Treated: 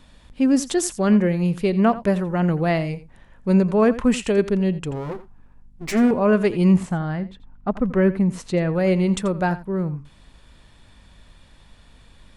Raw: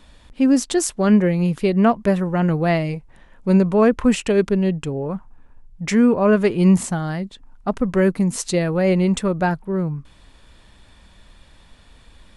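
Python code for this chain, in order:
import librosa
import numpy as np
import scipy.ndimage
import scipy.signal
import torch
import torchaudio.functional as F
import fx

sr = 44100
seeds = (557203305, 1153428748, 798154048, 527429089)

y = fx.lower_of_two(x, sr, delay_ms=7.8, at=(4.91, 6.11))
y = fx.add_hum(y, sr, base_hz=50, snr_db=34)
y = fx.bass_treble(y, sr, bass_db=2, treble_db=-14, at=(6.74, 8.74))
y = y + 10.0 ** (-16.0 / 20.0) * np.pad(y, (int(85 * sr / 1000.0), 0))[:len(y)]
y = y * 10.0 ** (-2.0 / 20.0)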